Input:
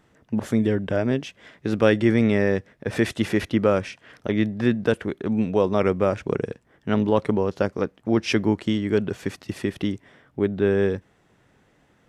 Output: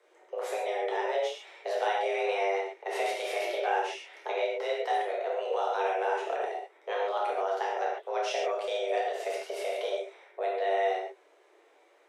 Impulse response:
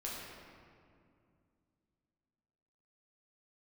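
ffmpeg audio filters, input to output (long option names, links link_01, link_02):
-filter_complex "[0:a]afreqshift=290,acrossover=split=570|1200[link_01][link_02][link_03];[link_01]acompressor=threshold=-29dB:ratio=4[link_04];[link_02]acompressor=threshold=-33dB:ratio=4[link_05];[link_03]acompressor=threshold=-32dB:ratio=4[link_06];[link_04][link_05][link_06]amix=inputs=3:normalize=0,flanger=delay=4.6:depth=4:regen=-36:speed=1.4:shape=triangular[link_07];[1:a]atrim=start_sample=2205,atrim=end_sample=3969,asetrate=26019,aresample=44100[link_08];[link_07][link_08]afir=irnorm=-1:irlink=0"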